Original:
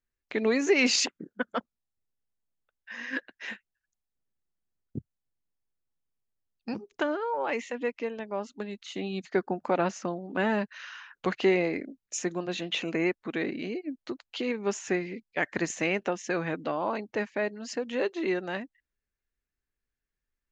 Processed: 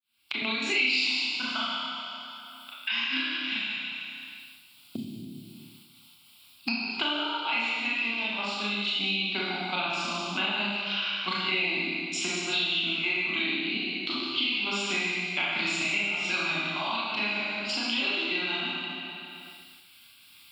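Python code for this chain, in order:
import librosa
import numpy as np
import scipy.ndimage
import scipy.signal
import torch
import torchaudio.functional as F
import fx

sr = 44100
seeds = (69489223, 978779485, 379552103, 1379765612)

p1 = fx.fade_in_head(x, sr, length_s=0.83)
p2 = fx.weighting(p1, sr, curve='D')
p3 = fx.step_gate(p2, sr, bpm=145, pattern='xxx.x.xxxxx.xx.', floor_db=-12.0, edge_ms=4.5)
p4 = scipy.signal.sosfilt(scipy.signal.butter(2, 86.0, 'highpass', fs=sr, output='sos'), p3)
p5 = fx.high_shelf(p4, sr, hz=2900.0, db=7.5)
p6 = fx.fixed_phaser(p5, sr, hz=1800.0, stages=6)
p7 = p6 + fx.echo_single(p6, sr, ms=146, db=-8.0, dry=0)
p8 = fx.rev_schroeder(p7, sr, rt60_s=1.2, comb_ms=27, drr_db=-8.0)
p9 = fx.band_squash(p8, sr, depth_pct=100)
y = F.gain(torch.from_numpy(p9), -6.5).numpy()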